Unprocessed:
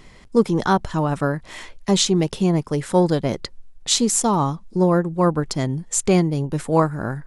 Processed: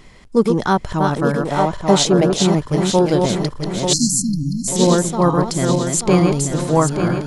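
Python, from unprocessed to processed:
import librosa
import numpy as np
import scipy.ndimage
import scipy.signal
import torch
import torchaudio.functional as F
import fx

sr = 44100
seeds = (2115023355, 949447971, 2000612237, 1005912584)

y = fx.reverse_delay_fb(x, sr, ms=443, feedback_pct=68, wet_db=-4.0)
y = fx.peak_eq(y, sr, hz=640.0, db=8.5, octaves=1.1, at=(1.45, 2.43))
y = fx.brickwall_bandstop(y, sr, low_hz=300.0, high_hz=4100.0, at=(3.93, 4.68))
y = F.gain(torch.from_numpy(y), 1.5).numpy()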